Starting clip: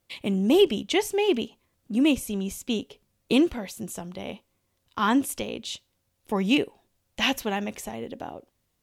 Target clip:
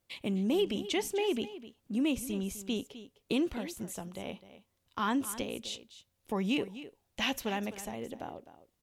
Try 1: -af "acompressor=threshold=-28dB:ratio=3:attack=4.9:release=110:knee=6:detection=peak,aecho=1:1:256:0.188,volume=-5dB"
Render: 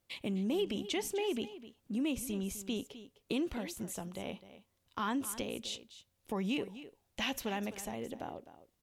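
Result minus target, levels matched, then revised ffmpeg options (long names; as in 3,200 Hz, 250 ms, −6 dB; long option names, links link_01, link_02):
downward compressor: peak gain reduction +4.5 dB
-af "acompressor=threshold=-21.5dB:ratio=3:attack=4.9:release=110:knee=6:detection=peak,aecho=1:1:256:0.188,volume=-5dB"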